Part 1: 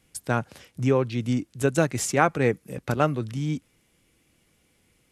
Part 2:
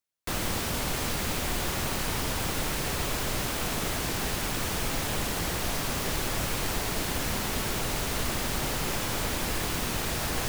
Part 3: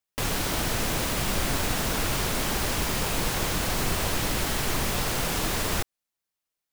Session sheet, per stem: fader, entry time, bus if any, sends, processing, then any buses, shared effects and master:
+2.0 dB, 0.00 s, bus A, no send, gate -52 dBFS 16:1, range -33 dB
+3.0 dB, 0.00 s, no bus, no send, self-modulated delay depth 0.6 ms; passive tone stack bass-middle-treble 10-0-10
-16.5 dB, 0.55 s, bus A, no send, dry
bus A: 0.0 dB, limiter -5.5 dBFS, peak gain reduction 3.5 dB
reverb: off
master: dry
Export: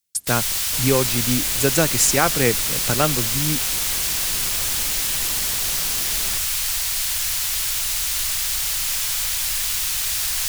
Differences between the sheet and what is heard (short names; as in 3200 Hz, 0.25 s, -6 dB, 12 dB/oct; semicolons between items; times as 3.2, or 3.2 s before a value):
stem 2: missing self-modulated delay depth 0.6 ms; stem 3 -16.5 dB -> -10.0 dB; master: extra high shelf 2500 Hz +10.5 dB